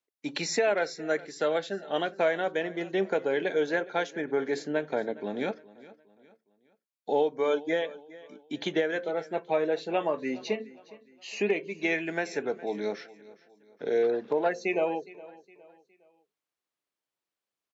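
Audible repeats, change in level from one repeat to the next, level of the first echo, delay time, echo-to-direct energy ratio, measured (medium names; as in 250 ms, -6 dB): 2, -8.0 dB, -20.0 dB, 413 ms, -19.5 dB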